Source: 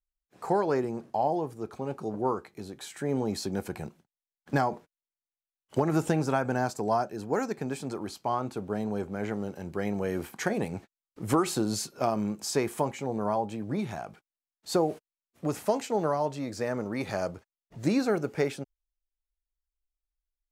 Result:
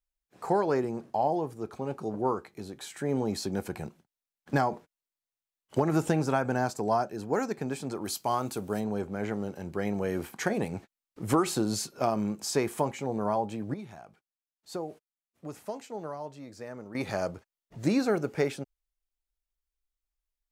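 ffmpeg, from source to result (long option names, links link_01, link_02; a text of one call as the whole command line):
ffmpeg -i in.wav -filter_complex "[0:a]asplit=3[link_01][link_02][link_03];[link_01]afade=type=out:start_time=8.04:duration=0.02[link_04];[link_02]aemphasis=mode=production:type=75kf,afade=type=in:start_time=8.04:duration=0.02,afade=type=out:start_time=8.79:duration=0.02[link_05];[link_03]afade=type=in:start_time=8.79:duration=0.02[link_06];[link_04][link_05][link_06]amix=inputs=3:normalize=0,asplit=3[link_07][link_08][link_09];[link_07]atrim=end=13.742[link_10];[link_08]atrim=start=13.738:end=16.952,asetpts=PTS-STARTPTS,volume=-10.5dB[link_11];[link_09]atrim=start=16.948[link_12];[link_10][link_11]acrossfade=duration=0.004:curve1=hsin:curve2=hsin[link_13];[link_13][link_12]acrossfade=duration=0.004:curve1=hsin:curve2=hsin" out.wav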